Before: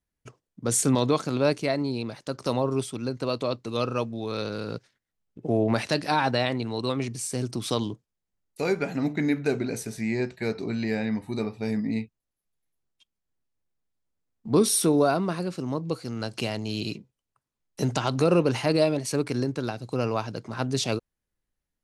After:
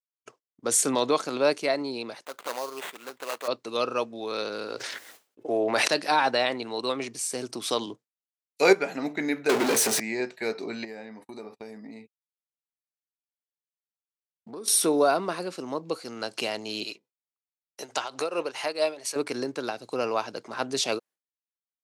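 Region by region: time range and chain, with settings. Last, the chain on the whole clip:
0:02.25–0:03.48: high-pass filter 1,300 Hz 6 dB per octave + sample-rate reduction 5,400 Hz, jitter 20%
0:04.67–0:05.88: parametric band 170 Hz −14 dB 0.54 octaves + level that may fall only so fast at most 25 dB per second
0:07.86–0:08.73: high-shelf EQ 10,000 Hz −2.5 dB + multiband upward and downward expander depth 100%
0:09.49–0:10.00: high-pass filter 120 Hz 24 dB per octave + power curve on the samples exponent 0.35
0:10.84–0:14.68: noise gate −42 dBFS, range −31 dB + dynamic equaliser 3,000 Hz, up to −7 dB, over −50 dBFS, Q 0.99 + downward compressor 12 to 1, threshold −32 dBFS
0:16.84–0:19.16: shaped tremolo triangle 4.6 Hz, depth 80% + parametric band 180 Hz −12 dB 1.8 octaves
whole clip: high-pass filter 390 Hz 12 dB per octave; downward expander −50 dBFS; level +2 dB

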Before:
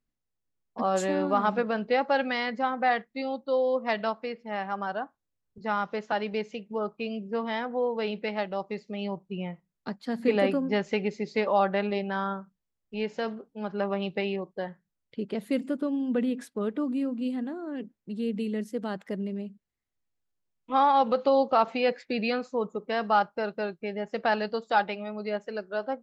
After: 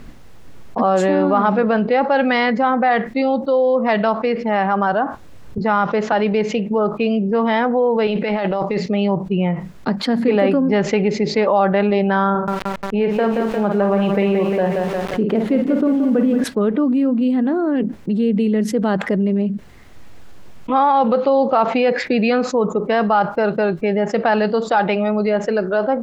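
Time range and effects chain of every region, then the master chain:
0:08.07–0:08.86: low-shelf EQ 450 Hz −4 dB + mains-hum notches 60/120/180/240 Hz + compressor whose output falls as the input rises −40 dBFS
0:12.30–0:16.44: low-pass filter 1,900 Hz 6 dB per octave + double-tracking delay 49 ms −9 dB + feedback echo at a low word length 176 ms, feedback 55%, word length 8 bits, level −8 dB
whole clip: low-pass filter 1,900 Hz 6 dB per octave; envelope flattener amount 70%; level +6.5 dB

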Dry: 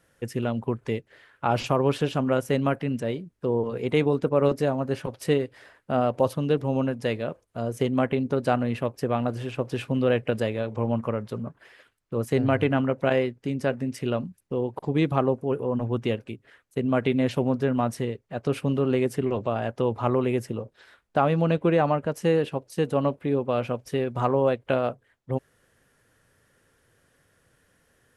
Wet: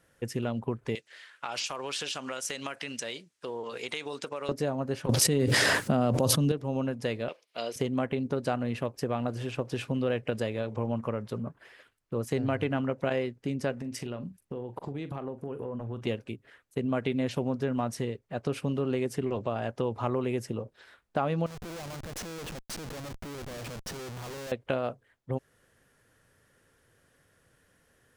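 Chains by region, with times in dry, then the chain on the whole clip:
0:00.95–0:04.49: meter weighting curve ITU-R 468 + downward compressor 5 to 1, threshold −30 dBFS
0:05.09–0:06.52: high-pass filter 180 Hz + bass and treble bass +15 dB, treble +7 dB + envelope flattener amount 100%
0:07.28–0:07.76: high-pass filter 440 Hz + flat-topped bell 3,300 Hz +13.5 dB
0:13.72–0:16.07: downward compressor 10 to 1, threshold −30 dBFS + double-tracking delay 42 ms −13 dB
0:21.46–0:24.52: downward compressor, threshold −34 dBFS + comparator with hysteresis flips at −46 dBFS
whole clip: dynamic equaliser 5,900 Hz, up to +5 dB, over −51 dBFS, Q 1; downward compressor 2 to 1, threshold −27 dBFS; level −1.5 dB

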